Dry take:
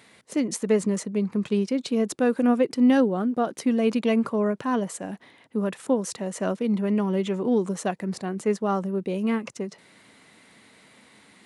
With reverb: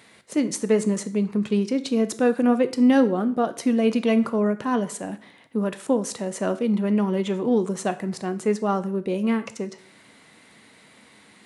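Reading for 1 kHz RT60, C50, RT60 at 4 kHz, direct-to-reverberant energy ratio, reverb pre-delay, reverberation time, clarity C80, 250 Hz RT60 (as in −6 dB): 0.50 s, 15.5 dB, 0.50 s, 11.0 dB, 5 ms, 0.50 s, 19.0 dB, 0.50 s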